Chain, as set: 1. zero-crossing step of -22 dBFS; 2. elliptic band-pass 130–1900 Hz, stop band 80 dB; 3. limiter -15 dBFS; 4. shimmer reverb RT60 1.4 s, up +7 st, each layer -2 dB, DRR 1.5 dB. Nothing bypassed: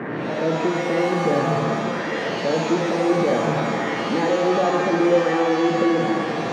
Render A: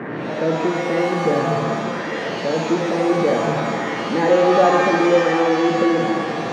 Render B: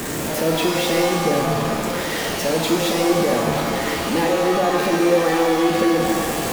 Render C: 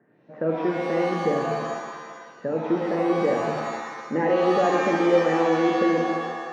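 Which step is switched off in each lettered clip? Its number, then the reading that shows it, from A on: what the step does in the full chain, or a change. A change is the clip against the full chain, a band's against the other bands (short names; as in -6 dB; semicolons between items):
3, crest factor change +2.0 dB; 2, 8 kHz band +11.0 dB; 1, distortion -7 dB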